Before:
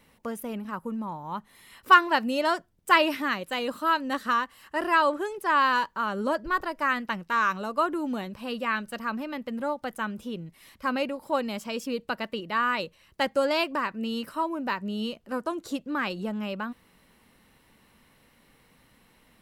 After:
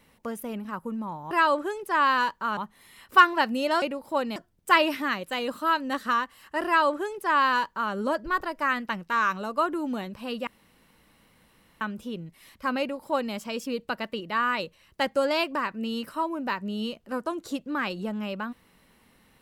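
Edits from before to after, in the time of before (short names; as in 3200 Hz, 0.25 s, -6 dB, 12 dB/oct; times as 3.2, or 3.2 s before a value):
4.86–6.12 copy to 1.31
8.67–10.01 room tone
11–11.54 copy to 2.56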